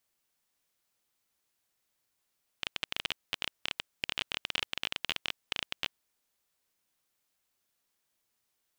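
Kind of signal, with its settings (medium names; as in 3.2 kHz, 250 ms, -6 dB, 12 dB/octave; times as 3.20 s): random clicks 19 per s -13.5 dBFS 3.37 s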